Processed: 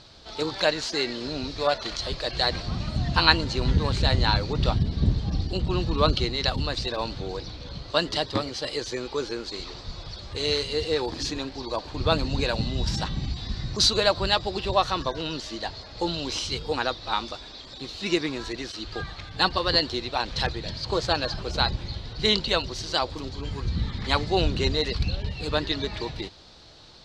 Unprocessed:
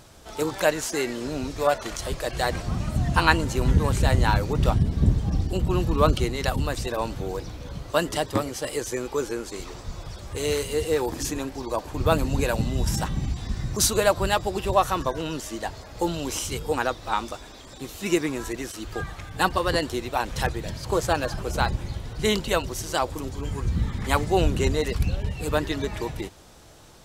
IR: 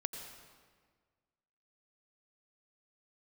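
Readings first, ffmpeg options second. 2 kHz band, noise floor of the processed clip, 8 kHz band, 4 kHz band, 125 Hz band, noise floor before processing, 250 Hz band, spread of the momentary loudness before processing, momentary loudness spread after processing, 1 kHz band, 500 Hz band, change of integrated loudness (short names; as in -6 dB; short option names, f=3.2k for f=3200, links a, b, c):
-1.0 dB, -43 dBFS, -7.0 dB, +7.5 dB, -2.5 dB, -44 dBFS, -2.5 dB, 11 LU, 11 LU, -2.0 dB, -2.5 dB, -0.5 dB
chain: -af "lowpass=f=4.3k:t=q:w=4.7,volume=-2.5dB"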